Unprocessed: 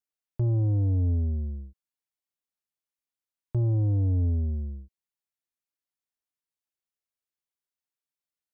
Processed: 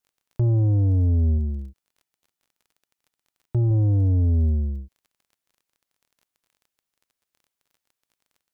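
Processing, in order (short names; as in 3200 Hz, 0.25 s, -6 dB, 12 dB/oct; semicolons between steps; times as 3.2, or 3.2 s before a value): limiter -25 dBFS, peak gain reduction 3 dB; 1.38–3.71 notch comb 540 Hz; crackle 28/s -55 dBFS; gain +8 dB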